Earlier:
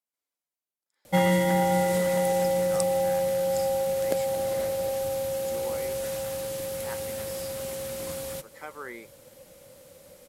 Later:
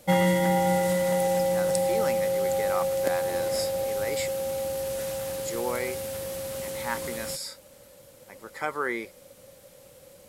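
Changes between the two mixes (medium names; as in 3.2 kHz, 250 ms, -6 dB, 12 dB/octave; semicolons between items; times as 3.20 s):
speech +10.5 dB; background: entry -1.05 s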